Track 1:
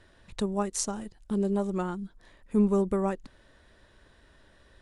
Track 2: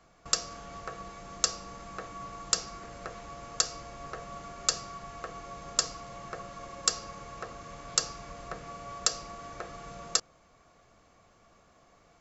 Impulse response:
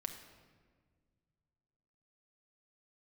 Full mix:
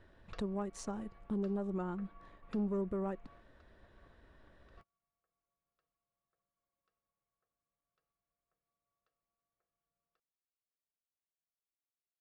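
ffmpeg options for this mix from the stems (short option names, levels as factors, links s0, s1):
-filter_complex "[0:a]asoftclip=type=tanh:threshold=0.112,lowpass=f=1400:p=1,volume=0.75,asplit=2[s0][s1];[1:a]lowpass=f=2800:w=0.5412,lowpass=f=2800:w=1.3066,volume=0.133[s2];[s1]apad=whole_len=538370[s3];[s2][s3]sidechaingate=range=0.0224:threshold=0.00126:ratio=16:detection=peak[s4];[s0][s4]amix=inputs=2:normalize=0,alimiter=level_in=1.78:limit=0.0631:level=0:latency=1:release=301,volume=0.562"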